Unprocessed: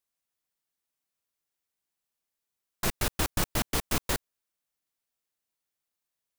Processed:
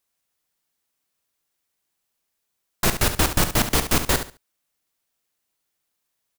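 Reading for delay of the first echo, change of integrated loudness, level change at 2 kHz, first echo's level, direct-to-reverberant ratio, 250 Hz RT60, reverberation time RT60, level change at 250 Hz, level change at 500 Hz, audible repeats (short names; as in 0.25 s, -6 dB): 70 ms, +9.0 dB, +9.0 dB, -10.0 dB, none, none, none, +9.0 dB, +9.0 dB, 2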